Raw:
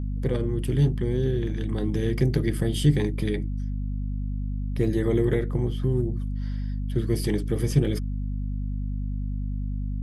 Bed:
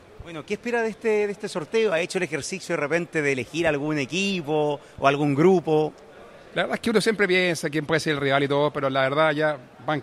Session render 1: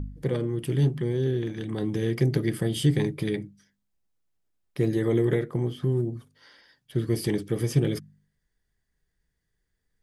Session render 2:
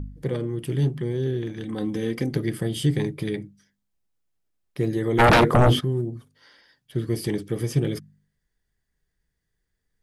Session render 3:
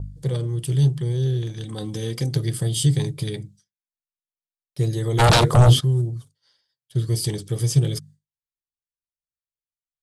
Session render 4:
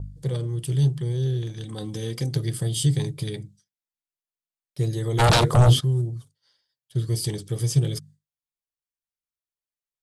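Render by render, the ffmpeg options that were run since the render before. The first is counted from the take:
-af "bandreject=f=50:t=h:w=4,bandreject=f=100:t=h:w=4,bandreject=f=150:t=h:w=4,bandreject=f=200:t=h:w=4,bandreject=f=250:t=h:w=4"
-filter_complex "[0:a]asettb=1/sr,asplit=3[a][b][c];[a]atrim=end=1.644[d];[b]atrim=start=1.64:end=2.34,asetpts=PTS-STARTPTS,afade=t=in:d=0.004:c=qsin,afade=t=out:st=0.696:d=0.004:c=qsin,aecho=1:1:3.9:0.58,atrim=end_sample=30870[e];[c]atrim=start=2.336[f];[d][e]acrossfade=d=0.004:c1=hsin:c2=qsin[g];[g][f]acrossfade=d=0.004:c1=qsin:c2=hsin,asplit=3[h][i][j];[h]afade=t=out:st=5.18:d=0.02[k];[i]aeval=exprs='0.266*sin(PI/2*6.31*val(0)/0.266)':c=same,afade=t=in:st=5.18:d=0.02,afade=t=out:st=5.79:d=0.02[l];[j]afade=t=in:st=5.79:d=0.02[m];[k][l][m]amix=inputs=3:normalize=0"
-af "agate=range=-33dB:threshold=-44dB:ratio=3:detection=peak,equalizer=f=125:t=o:w=1:g=9,equalizer=f=250:t=o:w=1:g=-10,equalizer=f=2k:t=o:w=1:g=-7,equalizer=f=4k:t=o:w=1:g=7,equalizer=f=8k:t=o:w=1:g=12"
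-af "volume=-2.5dB"

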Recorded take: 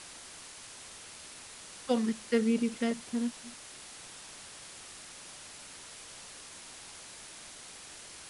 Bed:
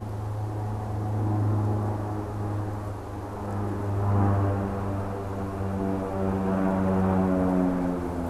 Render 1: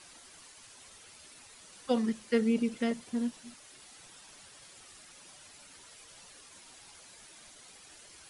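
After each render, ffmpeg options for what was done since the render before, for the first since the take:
-af "afftdn=nr=9:nf=-49"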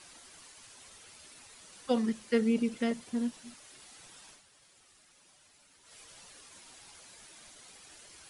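-filter_complex "[0:a]asplit=3[a][b][c];[a]atrim=end=4.42,asetpts=PTS-STARTPTS,afade=t=out:st=4.29:d=0.13:silence=0.354813[d];[b]atrim=start=4.42:end=5.83,asetpts=PTS-STARTPTS,volume=-9dB[e];[c]atrim=start=5.83,asetpts=PTS-STARTPTS,afade=t=in:d=0.13:silence=0.354813[f];[d][e][f]concat=n=3:v=0:a=1"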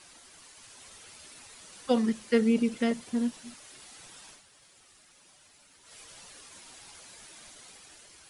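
-af "dynaudnorm=f=120:g=11:m=3.5dB"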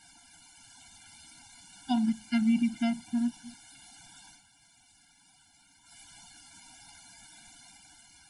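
-af "afftfilt=real='re*eq(mod(floor(b*sr/1024/340),2),0)':imag='im*eq(mod(floor(b*sr/1024/340),2),0)':win_size=1024:overlap=0.75"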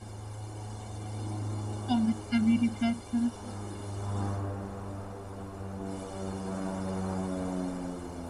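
-filter_complex "[1:a]volume=-10dB[a];[0:a][a]amix=inputs=2:normalize=0"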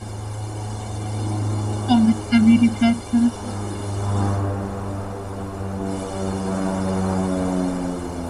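-af "volume=11.5dB"

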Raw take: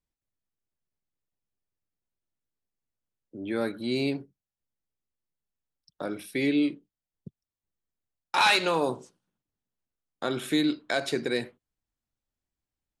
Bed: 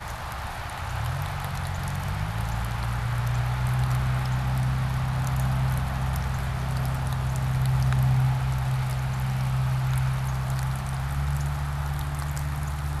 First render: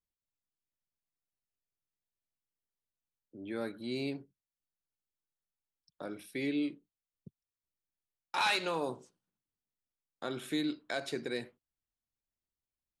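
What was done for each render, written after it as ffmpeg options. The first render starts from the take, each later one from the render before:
-af "volume=-8.5dB"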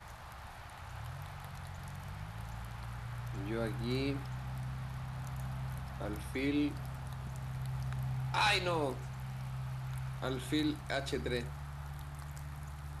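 -filter_complex "[1:a]volume=-15.5dB[a];[0:a][a]amix=inputs=2:normalize=0"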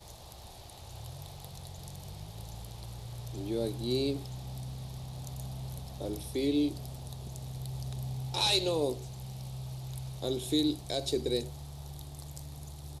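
-af "firequalizer=gain_entry='entry(180,0);entry(390,8);entry(1400,-16);entry(3700,8)':delay=0.05:min_phase=1"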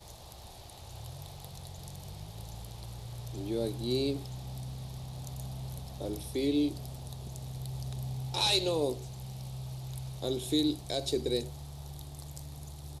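-af anull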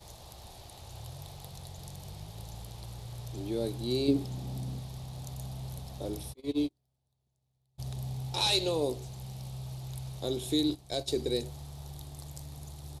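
-filter_complex "[0:a]asettb=1/sr,asplit=3[a][b][c];[a]atrim=end=4.084[d];[b]atrim=start=4.08:end=4.8,asetpts=PTS-STARTPTS,afade=t=in:d=0.004:c=qsin,afade=t=out:st=0.716:d=0.004:c=qsin,equalizer=f=260:w=0.99:g=10.5[e];[c]atrim=start=4.796[f];[d][e]acrossfade=d=0.004:c1=hsin:c2=qsin[g];[g][f]acrossfade=d=0.004:c1=qsin:c2=hsin,asplit=3[h][i][j];[h]afade=t=out:st=6.32:d=0.02[k];[i]agate=range=-38dB:threshold=-28dB:ratio=16:release=100:detection=peak,afade=t=in:st=6.32:d=0.02,afade=t=out:st=7.78:d=0.02[l];[j]afade=t=in:st=7.78:d=0.02[m];[k][l][m]amix=inputs=3:normalize=0,asettb=1/sr,asplit=3[n][o][p];[n]atrim=end=10.704[q];[o]atrim=start=10.7:end=11.11,asetpts=PTS-STARTPTS,afade=t=in:d=0.004:c=qsin,afade=t=out:st=0.406:d=0.004:c=qsin,agate=range=-10dB:threshold=-37dB:ratio=16:release=100:detection=peak[r];[p]atrim=start=11.106[s];[q][r]acrossfade=d=0.004:c1=hsin:c2=qsin[t];[t][s]acrossfade=d=0.004:c1=qsin:c2=hsin"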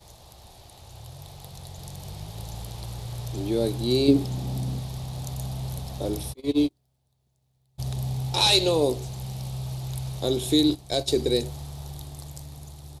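-af "dynaudnorm=f=520:g=7:m=8dB"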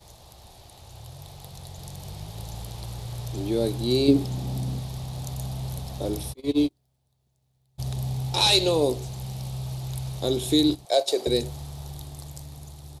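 -filter_complex "[0:a]asettb=1/sr,asplit=3[a][b][c];[a]atrim=end=10.854[d];[b]atrim=start=10.85:end=11.27,asetpts=PTS-STARTPTS,afade=t=in:d=0.004:c=qsin,afade=t=out:st=0.416:d=0.004:c=qsin,highpass=f=590:t=q:w=2.5[e];[c]atrim=start=11.266[f];[d][e]acrossfade=d=0.004:c1=hsin:c2=qsin[g];[g][f]acrossfade=d=0.004:c1=qsin:c2=hsin"

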